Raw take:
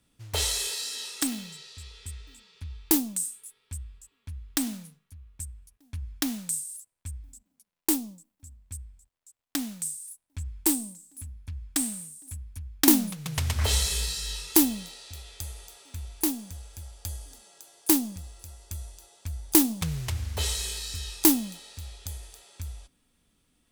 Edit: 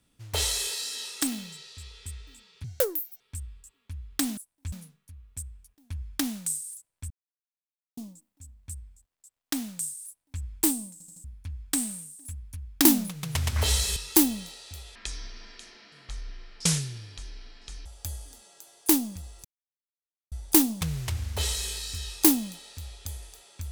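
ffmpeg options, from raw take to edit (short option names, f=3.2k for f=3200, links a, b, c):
-filter_complex "[0:a]asplit=16[a][b][c][d][e][f][g][h][i][j][k][l][m][n][o][p];[a]atrim=end=2.644[q];[b]atrim=start=2.64:end=3.58,asetpts=PTS-STARTPTS,asetrate=73647,aresample=44100[r];[c]atrim=start=3.576:end=4.752[s];[d]atrim=start=10.088:end=10.442[t];[e]atrim=start=4.748:end=7.13,asetpts=PTS-STARTPTS,afade=t=out:st=2.378:d=0.004:c=hsin[u];[f]atrim=start=7.13:end=8,asetpts=PTS-STARTPTS,volume=0[v];[g]atrim=start=8:end=11.032,asetpts=PTS-STARTPTS,afade=t=in:d=0.004:c=hsin[w];[h]atrim=start=10.948:end=11.032[x];[i]atrim=start=10.948:end=11.032[y];[j]atrim=start=10.948:end=11.032[z];[k]atrim=start=11.268:end=13.992[aa];[l]atrim=start=14.358:end=15.354[ab];[m]atrim=start=15.35:end=16.86,asetpts=PTS-STARTPTS,asetrate=22932,aresample=44100[ac];[n]atrim=start=16.856:end=18.45,asetpts=PTS-STARTPTS,afade=t=out:st=1.59:d=0.004:c=hsin[ad];[o]atrim=start=18.45:end=19.32,asetpts=PTS-STARTPTS,volume=0[ae];[p]atrim=start=19.32,asetpts=PTS-STARTPTS,afade=t=in:d=0.004:c=hsin[af];[q][r]acrossfade=d=0.004:c1=hsin:c2=hsin[ag];[ag][s]acrossfade=d=0.004:c1=hsin:c2=hsin[ah];[ah][t]acrossfade=d=0.004:c1=hsin:c2=hsin[ai];[u][v][w]concat=n=3:v=0:a=1[aj];[ai][aj]acrossfade=d=0.004:c1=hsin:c2=hsin[ak];[ak][x]acrossfade=d=0.004:c1=hsin:c2=hsin[al];[al][y]acrossfade=d=0.004:c1=hsin:c2=hsin[am];[am][z]acrossfade=d=0.004:c1=hsin:c2=hsin[an];[an][aa]acrossfade=d=0.004:c1=hsin:c2=hsin[ao];[ao][ab]acrossfade=d=0.004:c1=hsin:c2=hsin[ap];[ap][ac]acrossfade=d=0.004:c1=hsin:c2=hsin[aq];[ad][ae][af]concat=n=3:v=0:a=1[ar];[aq][ar]acrossfade=d=0.004:c1=hsin:c2=hsin"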